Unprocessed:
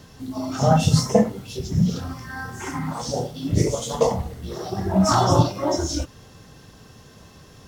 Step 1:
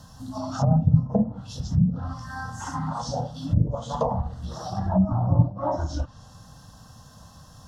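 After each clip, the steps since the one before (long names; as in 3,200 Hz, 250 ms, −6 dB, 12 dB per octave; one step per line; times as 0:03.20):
phaser with its sweep stopped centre 940 Hz, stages 4
treble cut that deepens with the level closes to 370 Hz, closed at −18 dBFS
level +1.5 dB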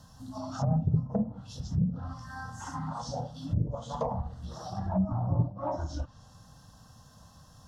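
soft clipping −8.5 dBFS, distortion −20 dB
level −6.5 dB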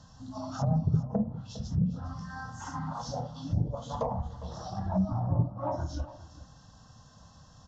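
single-tap delay 406 ms −16 dB
downsampling to 16,000 Hz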